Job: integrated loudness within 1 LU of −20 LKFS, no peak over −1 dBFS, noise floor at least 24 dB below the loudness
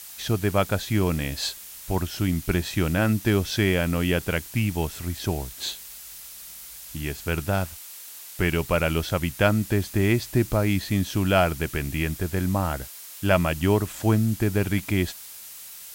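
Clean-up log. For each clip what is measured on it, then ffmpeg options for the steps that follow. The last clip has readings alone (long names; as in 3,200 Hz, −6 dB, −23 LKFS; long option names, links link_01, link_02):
background noise floor −42 dBFS; target noise floor −49 dBFS; integrated loudness −25.0 LKFS; sample peak −6.5 dBFS; target loudness −20.0 LKFS
→ -af "afftdn=noise_reduction=7:noise_floor=-42"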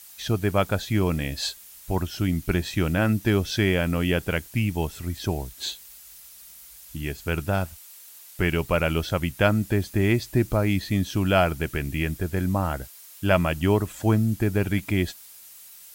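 background noise floor −47 dBFS; target noise floor −49 dBFS
→ -af "afftdn=noise_reduction=6:noise_floor=-47"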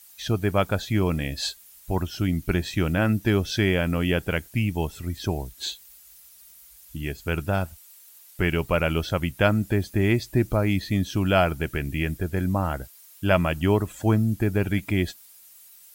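background noise floor −51 dBFS; integrated loudness −25.0 LKFS; sample peak −6.5 dBFS; target loudness −20.0 LKFS
→ -af "volume=5dB"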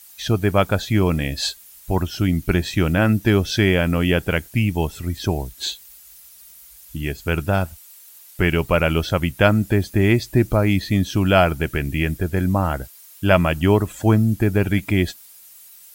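integrated loudness −20.0 LKFS; sample peak −1.5 dBFS; background noise floor −46 dBFS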